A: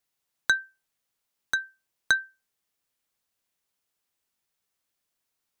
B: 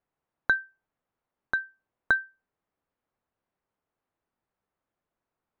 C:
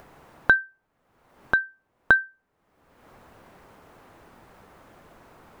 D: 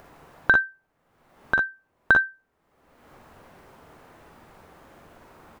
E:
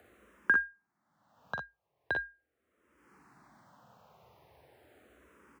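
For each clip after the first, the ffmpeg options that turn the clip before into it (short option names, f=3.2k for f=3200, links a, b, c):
-af "lowpass=1.2k,volume=5.5dB"
-filter_complex "[0:a]highshelf=f=3.5k:g=-9.5,asplit=2[a][b];[b]acompressor=mode=upward:threshold=-29dB:ratio=2.5,volume=3dB[c];[a][c]amix=inputs=2:normalize=0"
-af "aecho=1:1:44|57:0.596|0.531,volume=-1dB"
-filter_complex "[0:a]afreqshift=55,asplit=2[a][b];[b]afreqshift=-0.4[c];[a][c]amix=inputs=2:normalize=1,volume=-7.5dB"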